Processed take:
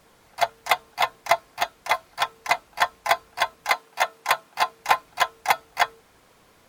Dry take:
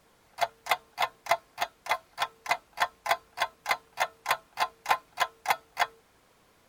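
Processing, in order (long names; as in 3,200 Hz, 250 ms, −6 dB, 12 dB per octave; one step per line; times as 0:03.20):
0:03.69–0:04.78: high-pass filter 240 Hz → 100 Hz 12 dB per octave
level +6 dB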